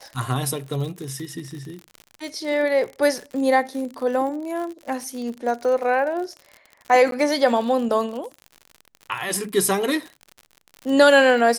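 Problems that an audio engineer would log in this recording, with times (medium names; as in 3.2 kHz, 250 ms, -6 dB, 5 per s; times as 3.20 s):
crackle 64 per s -30 dBFS
7.11–7.12 s: dropout 12 ms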